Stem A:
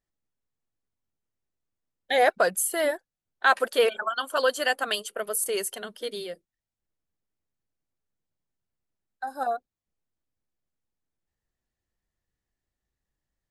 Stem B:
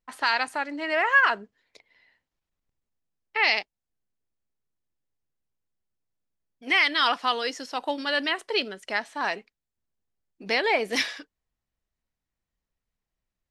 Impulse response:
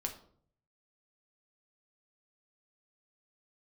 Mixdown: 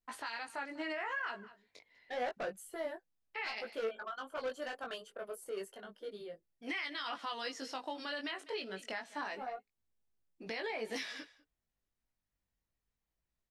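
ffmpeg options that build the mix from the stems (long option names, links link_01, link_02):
-filter_complex "[0:a]lowpass=frequency=1400:poles=1,asoftclip=type=tanh:threshold=-24dB,acontrast=80,volume=-13.5dB[link_01];[1:a]acompressor=threshold=-23dB:ratio=6,volume=-1.5dB,asplit=2[link_02][link_03];[link_03]volume=-23dB,aecho=0:1:198:1[link_04];[link_01][link_02][link_04]amix=inputs=3:normalize=0,flanger=delay=17.5:depth=3.6:speed=0.29,alimiter=level_in=5.5dB:limit=-24dB:level=0:latency=1:release=218,volume=-5.5dB"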